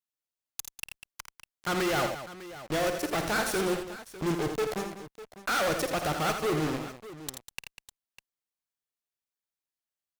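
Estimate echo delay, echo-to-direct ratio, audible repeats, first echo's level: 53 ms, -5.0 dB, 4, -12.5 dB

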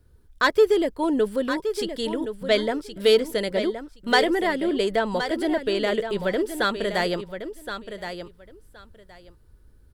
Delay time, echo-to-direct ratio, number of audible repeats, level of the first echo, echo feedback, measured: 1070 ms, -9.5 dB, 2, -9.5 dB, 17%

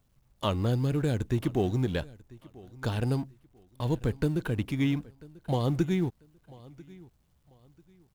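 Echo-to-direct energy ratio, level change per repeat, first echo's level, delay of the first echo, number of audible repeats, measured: -21.5 dB, -11.0 dB, -22.0 dB, 992 ms, 2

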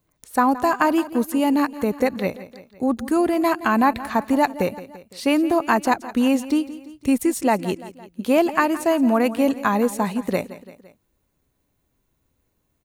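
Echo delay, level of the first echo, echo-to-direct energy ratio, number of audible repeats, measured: 170 ms, -16.0 dB, -14.5 dB, 3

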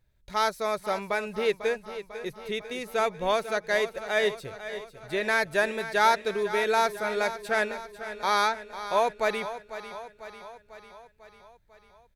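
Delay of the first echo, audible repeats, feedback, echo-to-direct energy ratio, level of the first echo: 497 ms, 5, 59%, -10.5 dB, -12.5 dB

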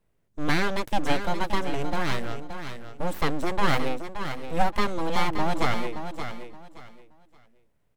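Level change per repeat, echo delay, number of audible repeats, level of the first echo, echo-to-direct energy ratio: -12.5 dB, 573 ms, 3, -9.0 dB, -8.5 dB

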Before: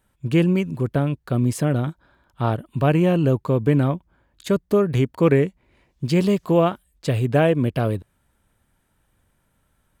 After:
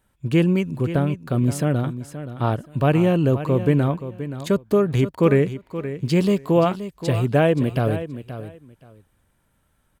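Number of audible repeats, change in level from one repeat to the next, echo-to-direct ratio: 2, -14.5 dB, -12.0 dB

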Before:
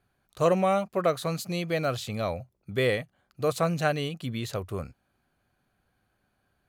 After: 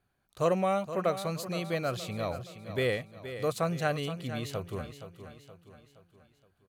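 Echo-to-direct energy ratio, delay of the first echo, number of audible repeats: -10.5 dB, 471 ms, 4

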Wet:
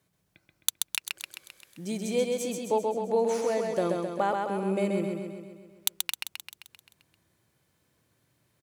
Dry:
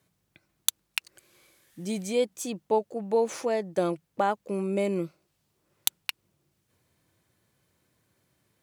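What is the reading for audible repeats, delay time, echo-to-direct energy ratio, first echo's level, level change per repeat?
7, 131 ms, -1.5 dB, -3.5 dB, -4.5 dB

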